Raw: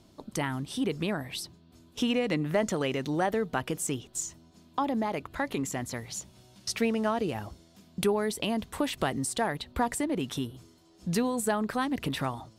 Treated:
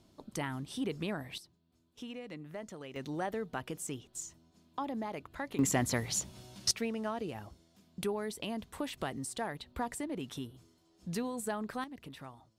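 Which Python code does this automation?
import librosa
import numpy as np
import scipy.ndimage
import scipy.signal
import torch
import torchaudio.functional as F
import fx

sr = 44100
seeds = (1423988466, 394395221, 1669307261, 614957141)

y = fx.gain(x, sr, db=fx.steps((0.0, -6.0), (1.38, -17.0), (2.96, -8.5), (5.59, 4.0), (6.71, -8.5), (11.84, -17.0)))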